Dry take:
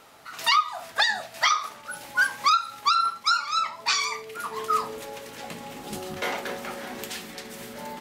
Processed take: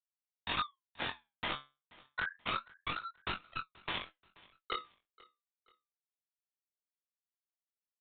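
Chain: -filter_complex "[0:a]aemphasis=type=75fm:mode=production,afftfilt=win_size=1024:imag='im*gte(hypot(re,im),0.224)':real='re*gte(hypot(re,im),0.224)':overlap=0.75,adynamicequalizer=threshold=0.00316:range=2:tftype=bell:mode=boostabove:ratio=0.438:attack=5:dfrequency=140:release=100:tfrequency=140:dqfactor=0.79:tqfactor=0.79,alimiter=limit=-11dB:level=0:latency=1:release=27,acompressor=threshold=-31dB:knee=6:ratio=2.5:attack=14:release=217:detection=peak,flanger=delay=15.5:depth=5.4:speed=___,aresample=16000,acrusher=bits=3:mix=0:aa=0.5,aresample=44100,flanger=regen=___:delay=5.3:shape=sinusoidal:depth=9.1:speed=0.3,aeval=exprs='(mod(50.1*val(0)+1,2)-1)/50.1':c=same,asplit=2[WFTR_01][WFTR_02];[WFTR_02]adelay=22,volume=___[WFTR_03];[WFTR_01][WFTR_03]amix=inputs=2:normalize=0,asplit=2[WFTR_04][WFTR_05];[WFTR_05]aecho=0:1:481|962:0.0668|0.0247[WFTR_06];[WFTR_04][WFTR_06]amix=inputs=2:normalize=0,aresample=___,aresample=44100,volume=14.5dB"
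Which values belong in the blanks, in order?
1.3, 69, -5.5dB, 8000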